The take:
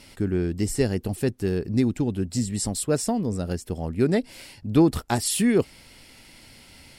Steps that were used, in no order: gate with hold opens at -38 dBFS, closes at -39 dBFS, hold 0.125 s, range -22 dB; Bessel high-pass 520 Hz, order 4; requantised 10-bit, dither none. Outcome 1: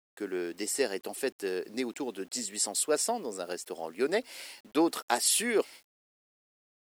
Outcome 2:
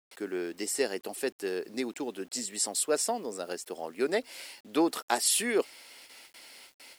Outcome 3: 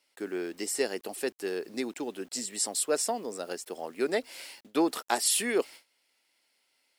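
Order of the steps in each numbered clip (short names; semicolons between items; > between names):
Bessel high-pass > gate with hold > requantised; gate with hold > Bessel high-pass > requantised; Bessel high-pass > requantised > gate with hold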